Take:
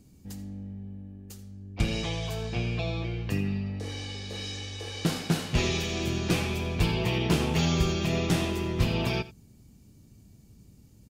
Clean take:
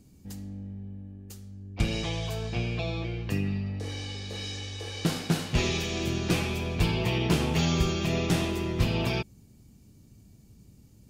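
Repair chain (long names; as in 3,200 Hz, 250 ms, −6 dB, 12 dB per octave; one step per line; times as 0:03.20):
echo removal 86 ms −17.5 dB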